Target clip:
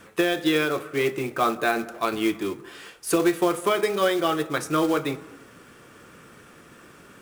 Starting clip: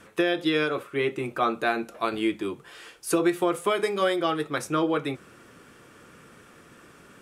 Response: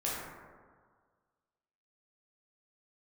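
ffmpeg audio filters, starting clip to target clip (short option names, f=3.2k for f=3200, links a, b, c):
-filter_complex "[0:a]acontrast=49,acrusher=bits=4:mode=log:mix=0:aa=0.000001,asplit=2[a][b];[1:a]atrim=start_sample=2205,afade=t=out:st=0.45:d=0.01,atrim=end_sample=20286[c];[b][c]afir=irnorm=-1:irlink=0,volume=-19.5dB[d];[a][d]amix=inputs=2:normalize=0,volume=-4.5dB"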